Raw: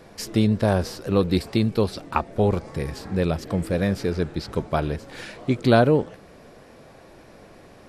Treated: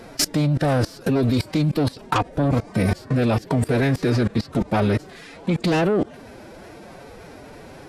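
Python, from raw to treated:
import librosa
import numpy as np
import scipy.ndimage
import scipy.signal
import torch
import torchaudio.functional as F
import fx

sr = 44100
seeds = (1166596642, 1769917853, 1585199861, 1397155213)

y = fx.cheby_harmonics(x, sr, harmonics=(5, 7), levels_db=(-6, -41), full_scale_db=-4.0)
y = fx.pitch_keep_formants(y, sr, semitones=5.5)
y = fx.level_steps(y, sr, step_db=23)
y = y * 10.0 ** (4.5 / 20.0)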